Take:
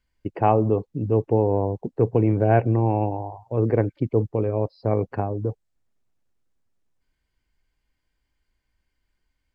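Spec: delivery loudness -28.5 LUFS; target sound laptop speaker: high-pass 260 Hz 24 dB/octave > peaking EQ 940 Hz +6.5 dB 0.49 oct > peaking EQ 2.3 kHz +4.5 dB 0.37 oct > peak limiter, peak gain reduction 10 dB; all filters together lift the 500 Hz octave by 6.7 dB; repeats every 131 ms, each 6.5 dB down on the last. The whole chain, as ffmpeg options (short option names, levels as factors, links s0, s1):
-af "highpass=f=260:w=0.5412,highpass=f=260:w=1.3066,equalizer=f=500:t=o:g=7.5,equalizer=f=940:t=o:w=0.49:g=6.5,equalizer=f=2300:t=o:w=0.37:g=4.5,aecho=1:1:131|262|393|524|655|786:0.473|0.222|0.105|0.0491|0.0231|0.0109,volume=0.447,alimiter=limit=0.133:level=0:latency=1"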